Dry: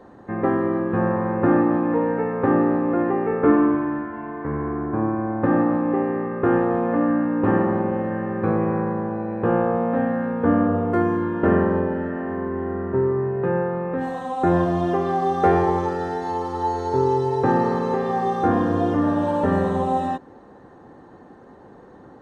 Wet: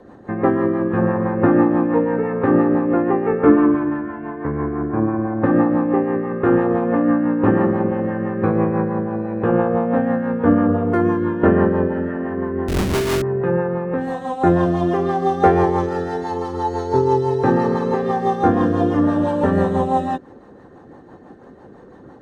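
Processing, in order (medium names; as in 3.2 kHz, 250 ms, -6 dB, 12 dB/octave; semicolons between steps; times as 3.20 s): 12.68–13.22 s: Schmitt trigger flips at -25.5 dBFS; rotary cabinet horn 6 Hz; trim +5 dB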